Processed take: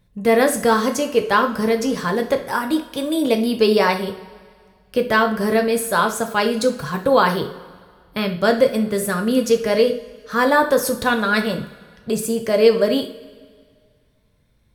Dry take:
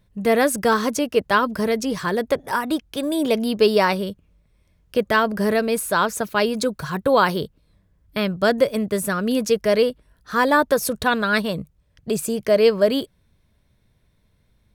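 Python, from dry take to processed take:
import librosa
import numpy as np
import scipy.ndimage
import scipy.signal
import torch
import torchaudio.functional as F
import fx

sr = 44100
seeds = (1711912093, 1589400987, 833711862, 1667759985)

y = fx.rev_double_slope(x, sr, seeds[0], early_s=0.41, late_s=1.9, knee_db=-17, drr_db=4.0)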